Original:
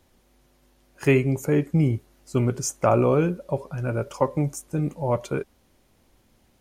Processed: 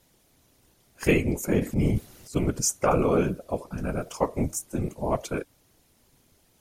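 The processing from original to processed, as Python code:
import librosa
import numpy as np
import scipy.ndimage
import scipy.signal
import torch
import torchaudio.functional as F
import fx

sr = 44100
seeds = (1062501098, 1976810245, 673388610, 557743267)

y = fx.high_shelf(x, sr, hz=3700.0, db=9.0)
y = fx.transient(y, sr, attack_db=-6, sustain_db=10, at=(1.59, 2.36))
y = fx.whisperise(y, sr, seeds[0])
y = y * librosa.db_to_amplitude(-3.0)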